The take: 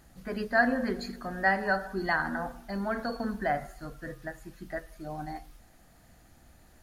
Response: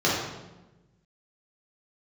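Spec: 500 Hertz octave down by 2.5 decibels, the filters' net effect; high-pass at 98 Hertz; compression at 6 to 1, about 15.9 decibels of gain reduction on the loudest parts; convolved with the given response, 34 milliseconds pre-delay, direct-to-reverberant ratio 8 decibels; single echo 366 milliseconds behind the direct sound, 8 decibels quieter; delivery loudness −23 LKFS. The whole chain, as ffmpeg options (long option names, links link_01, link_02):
-filter_complex "[0:a]highpass=98,equalizer=frequency=500:width_type=o:gain=-3.5,acompressor=threshold=-37dB:ratio=6,aecho=1:1:366:0.398,asplit=2[link_01][link_02];[1:a]atrim=start_sample=2205,adelay=34[link_03];[link_02][link_03]afir=irnorm=-1:irlink=0,volume=-24.5dB[link_04];[link_01][link_04]amix=inputs=2:normalize=0,volume=17dB"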